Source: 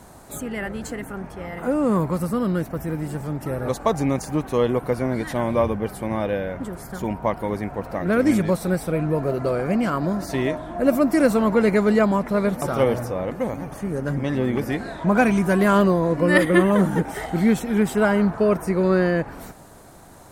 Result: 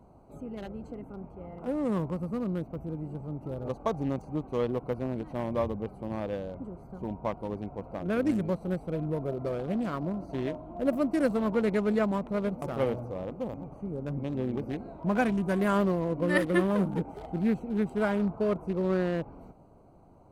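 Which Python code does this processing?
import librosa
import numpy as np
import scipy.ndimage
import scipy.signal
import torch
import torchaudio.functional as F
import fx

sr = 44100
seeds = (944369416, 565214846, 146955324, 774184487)

y = fx.wiener(x, sr, points=25)
y = F.gain(torch.from_numpy(y), -8.5).numpy()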